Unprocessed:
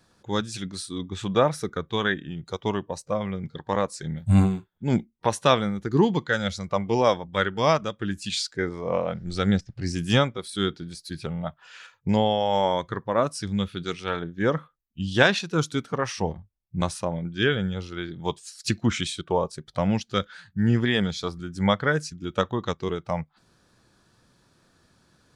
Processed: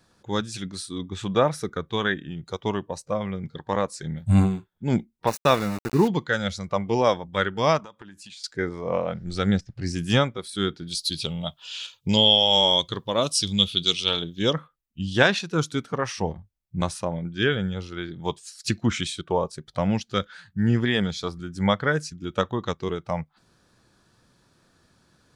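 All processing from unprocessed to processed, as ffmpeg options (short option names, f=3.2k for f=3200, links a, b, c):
-filter_complex "[0:a]asettb=1/sr,asplit=3[a][b][c];[a]atrim=end=5.274[d];[b]atrim=start=5.27:end=6.08,asetpts=PTS-STARTPTS,afade=t=in:d=0.004:c=qsin,afade=t=out:st=0.806:d=0.004:c=qsin,aeval=exprs='val(0)*gte(abs(val(0)),0.0355)':c=same,asuperstop=centerf=3200:order=4:qfactor=6[e];[c]atrim=start=6.076[f];[d][e]acrossfade=d=0.004:c1=hsin:c2=qsin[g];[g][f]acrossfade=d=0.004:c1=qsin:c2=hsin,asettb=1/sr,asplit=3[h][i][j];[h]atrim=end=7.794[k];[i]atrim=start=7.79:end=8.44,asetpts=PTS-STARTPTS,afade=t=in:d=0.004:c=qsin,afade=t=out:st=0.646:d=0.004:c=qsin,highpass=f=210:p=1,acompressor=threshold=-41dB:ratio=10:attack=3.2:release=140:knee=1:detection=peak,equalizer=f=930:w=3.2:g=13.5[l];[j]atrim=start=8.436[m];[k][l]acrossfade=d=0.004:c1=hsin:c2=qsin[n];[n][m]acrossfade=d=0.004:c1=qsin:c2=hsin,asettb=1/sr,asplit=3[o][p][q];[o]atrim=end=10.874[r];[p]atrim=start=10.87:end=14.53,asetpts=PTS-STARTPTS,afade=t=in:d=0.004:c=qsin,afade=t=out:st=3.656:d=0.004:c=qsin,highshelf=f=2.4k:t=q:w=3:g=10.5,bandreject=f=750:w=20[s];[q]atrim=start=14.526[t];[r][s]acrossfade=d=0.004:c1=hsin:c2=qsin[u];[u][t]acrossfade=d=0.004:c1=qsin:c2=hsin"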